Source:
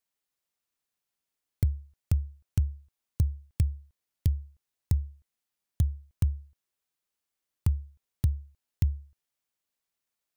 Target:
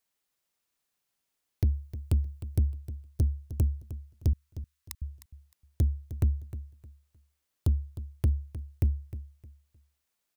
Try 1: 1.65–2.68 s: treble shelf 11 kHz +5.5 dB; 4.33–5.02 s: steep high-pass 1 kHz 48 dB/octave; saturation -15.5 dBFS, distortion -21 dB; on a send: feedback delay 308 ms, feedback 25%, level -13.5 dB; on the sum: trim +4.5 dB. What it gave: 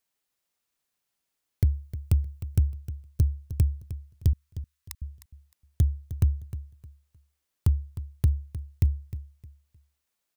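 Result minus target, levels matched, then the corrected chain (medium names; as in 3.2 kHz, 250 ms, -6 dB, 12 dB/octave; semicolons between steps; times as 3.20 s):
saturation: distortion -10 dB
1.65–2.68 s: treble shelf 11 kHz +5.5 dB; 4.33–5.02 s: steep high-pass 1 kHz 48 dB/octave; saturation -23 dBFS, distortion -11 dB; on a send: feedback delay 308 ms, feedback 25%, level -13.5 dB; on the sum: trim +4.5 dB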